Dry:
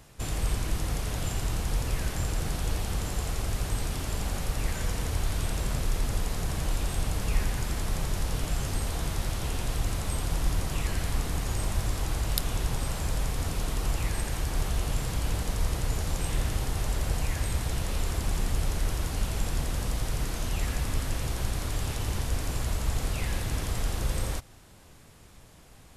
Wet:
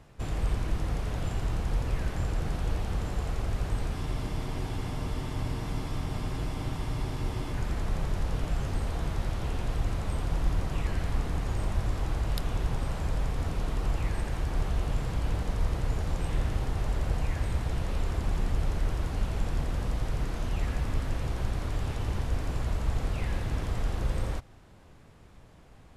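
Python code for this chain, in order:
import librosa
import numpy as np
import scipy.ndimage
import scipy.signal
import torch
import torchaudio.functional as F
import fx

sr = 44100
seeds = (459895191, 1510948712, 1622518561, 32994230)

y = fx.lowpass(x, sr, hz=1800.0, slope=6)
y = fx.spec_freeze(y, sr, seeds[0], at_s=3.98, hold_s=3.56)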